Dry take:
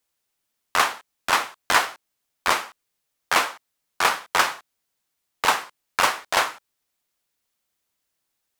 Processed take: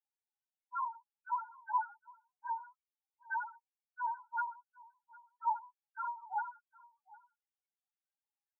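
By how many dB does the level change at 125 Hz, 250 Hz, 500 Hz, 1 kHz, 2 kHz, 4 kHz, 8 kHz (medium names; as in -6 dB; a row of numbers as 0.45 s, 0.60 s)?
under -40 dB, under -40 dB, under -40 dB, -12.5 dB, -21.5 dB, under -40 dB, under -40 dB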